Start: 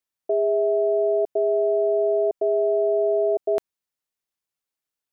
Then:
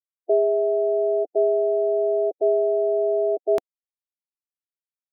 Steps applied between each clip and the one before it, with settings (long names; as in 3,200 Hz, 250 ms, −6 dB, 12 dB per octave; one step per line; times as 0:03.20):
spectral dynamics exaggerated over time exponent 2
reverb reduction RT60 1.1 s
level +4 dB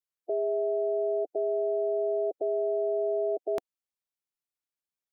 brickwall limiter −22 dBFS, peak gain reduction 11 dB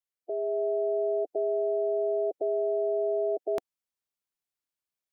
automatic gain control gain up to 4 dB
level −3.5 dB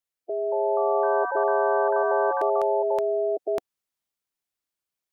delay with pitch and tempo change per echo 303 ms, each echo +5 semitones, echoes 3
level +3 dB